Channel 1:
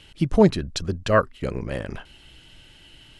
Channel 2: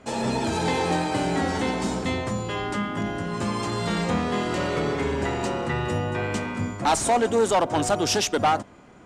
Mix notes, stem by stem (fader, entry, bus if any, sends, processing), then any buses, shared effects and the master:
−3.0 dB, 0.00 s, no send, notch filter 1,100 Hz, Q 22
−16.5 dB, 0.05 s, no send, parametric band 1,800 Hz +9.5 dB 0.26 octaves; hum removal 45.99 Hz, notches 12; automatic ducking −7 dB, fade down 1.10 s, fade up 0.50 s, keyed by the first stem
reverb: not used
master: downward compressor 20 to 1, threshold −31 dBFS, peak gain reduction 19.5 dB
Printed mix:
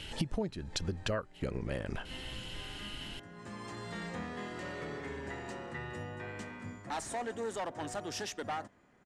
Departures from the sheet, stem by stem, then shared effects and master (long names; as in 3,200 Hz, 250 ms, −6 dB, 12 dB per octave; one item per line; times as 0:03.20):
stem 1 −3.0 dB → +5.5 dB
stem 2: missing hum removal 45.99 Hz, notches 12